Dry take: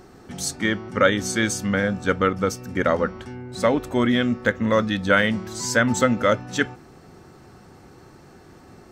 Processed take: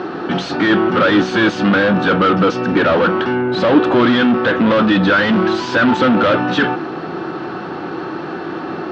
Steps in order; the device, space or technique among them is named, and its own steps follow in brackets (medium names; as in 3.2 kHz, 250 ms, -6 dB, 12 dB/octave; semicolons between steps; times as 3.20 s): overdrive pedal into a guitar cabinet (overdrive pedal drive 37 dB, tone 4.9 kHz, clips at -2.5 dBFS; cabinet simulation 97–3600 Hz, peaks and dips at 170 Hz +6 dB, 320 Hz +10 dB, 1.4 kHz +3 dB, 2.1 kHz -8 dB); trim -4.5 dB